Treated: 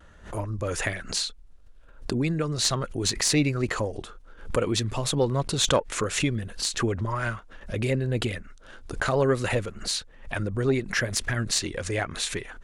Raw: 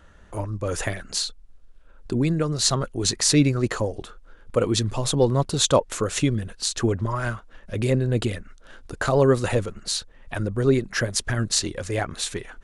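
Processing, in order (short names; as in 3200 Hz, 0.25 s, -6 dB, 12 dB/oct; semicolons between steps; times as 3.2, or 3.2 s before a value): dynamic EQ 2200 Hz, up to +6 dB, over -42 dBFS, Q 1.3; added harmonics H 2 -14 dB, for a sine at -2 dBFS; in parallel at +1.5 dB: compressor, threshold -28 dBFS, peak gain reduction 15.5 dB; on the sum: vibrato 0.65 Hz 26 cents; backwards sustainer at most 130 dB/s; gain -7 dB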